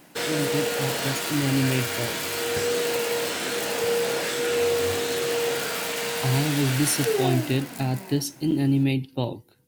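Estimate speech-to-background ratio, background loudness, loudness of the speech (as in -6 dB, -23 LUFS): -1.0 dB, -25.5 LUFS, -26.5 LUFS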